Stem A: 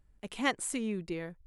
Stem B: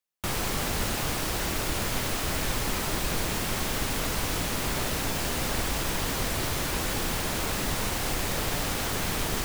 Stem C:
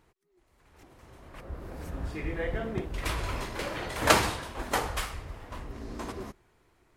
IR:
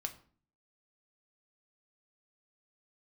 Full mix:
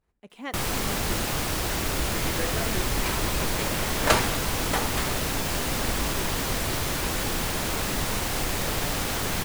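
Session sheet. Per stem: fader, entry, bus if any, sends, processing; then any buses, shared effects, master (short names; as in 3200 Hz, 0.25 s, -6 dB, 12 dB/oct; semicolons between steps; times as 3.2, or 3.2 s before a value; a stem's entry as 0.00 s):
-6.5 dB, 0.00 s, send -12.5 dB, HPF 350 Hz 6 dB/oct; tilt -2 dB/oct
+1.5 dB, 0.30 s, no send, requantised 12-bit, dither triangular
0.0 dB, 0.00 s, no send, expander -56 dBFS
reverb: on, RT60 0.45 s, pre-delay 4 ms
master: dry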